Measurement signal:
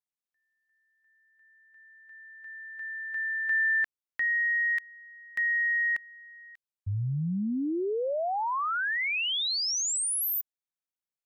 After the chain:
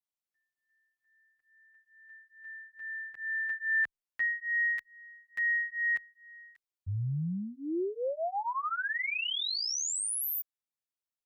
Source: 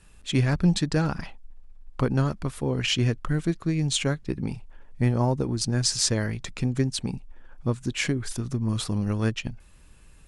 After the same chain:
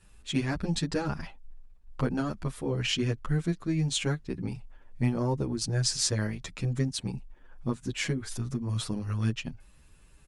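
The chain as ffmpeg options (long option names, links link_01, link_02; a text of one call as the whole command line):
ffmpeg -i in.wav -filter_complex "[0:a]asplit=2[link_01][link_02];[link_02]adelay=8.4,afreqshift=2.3[link_03];[link_01][link_03]amix=inputs=2:normalize=1,volume=-1dB" out.wav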